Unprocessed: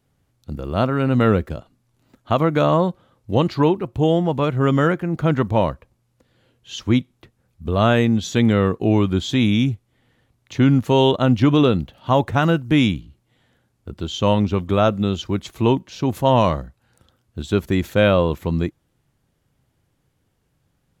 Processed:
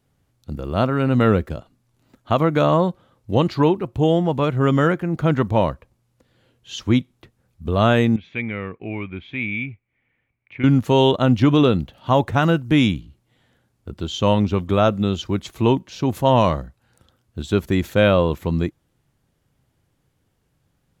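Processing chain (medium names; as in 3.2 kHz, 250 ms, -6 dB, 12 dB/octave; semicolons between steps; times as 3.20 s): 8.16–10.64 s: four-pole ladder low-pass 2.4 kHz, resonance 85%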